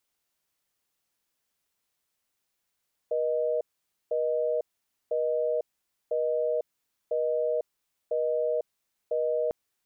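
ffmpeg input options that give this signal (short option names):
-f lavfi -i "aevalsrc='0.0447*(sin(2*PI*480*t)+sin(2*PI*620*t))*clip(min(mod(t,1),0.5-mod(t,1))/0.005,0,1)':d=6.4:s=44100"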